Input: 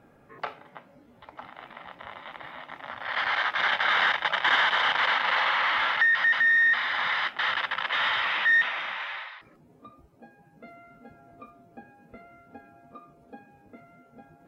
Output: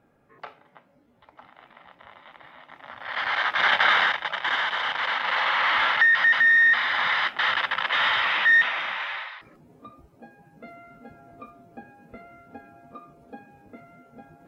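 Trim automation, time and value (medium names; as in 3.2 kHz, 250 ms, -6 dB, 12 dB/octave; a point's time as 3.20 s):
2.59 s -6.5 dB
3.83 s +6 dB
4.26 s -3 dB
4.98 s -3 dB
5.76 s +3.5 dB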